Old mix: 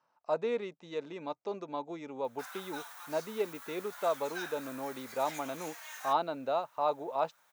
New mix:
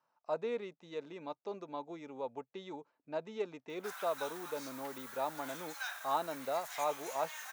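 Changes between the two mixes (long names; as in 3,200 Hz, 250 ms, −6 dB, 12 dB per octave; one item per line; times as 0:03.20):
speech −4.5 dB
background: entry +1.45 s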